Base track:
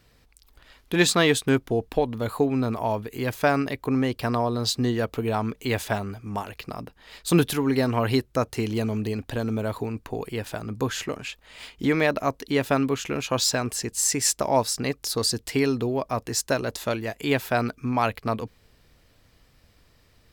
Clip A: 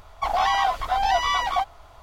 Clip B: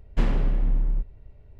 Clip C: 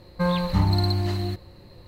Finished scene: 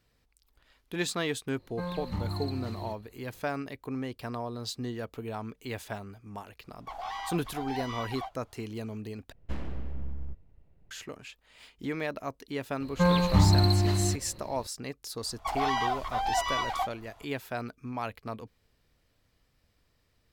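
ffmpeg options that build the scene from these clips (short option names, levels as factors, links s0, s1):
-filter_complex "[3:a]asplit=2[s0][s1];[1:a]asplit=2[s2][s3];[0:a]volume=0.266[s4];[s2]flanger=delay=0.4:depth=10:regen=-54:speed=1.4:shape=sinusoidal[s5];[2:a]aeval=exprs='abs(val(0))':c=same[s6];[s4]asplit=2[s7][s8];[s7]atrim=end=9.324[s9];[s6]atrim=end=1.59,asetpts=PTS-STARTPTS,volume=0.282[s10];[s8]atrim=start=10.906[s11];[s0]atrim=end=1.87,asetpts=PTS-STARTPTS,volume=0.224,afade=t=in:d=0.004:c=hsin,afade=t=out:st=1.866:d=0.004:c=hsin,adelay=1580[s12];[s5]atrim=end=2.02,asetpts=PTS-STARTPTS,volume=0.251,afade=t=in:d=0.004:c=hsin,afade=t=out:st=2.016:d=0.004:c=hsin,adelay=6650[s13];[s1]atrim=end=1.87,asetpts=PTS-STARTPTS,afade=t=in:d=0.004:c=hsin,afade=t=out:st=1.866:d=0.004:c=hsin,adelay=12800[s14];[s3]atrim=end=2.02,asetpts=PTS-STARTPTS,volume=0.422,afade=t=in:d=0.004:c=hsin,afade=t=out:st=2.016:d=0.004:c=hsin,adelay=15230[s15];[s9][s10]acrossfade=d=0.004:c1=hsin:c2=hsin[s16];[s16][s11]acrossfade=d=0.004:c1=hsin:c2=hsin[s17];[s17][s12][s13][s14][s15]amix=inputs=5:normalize=0"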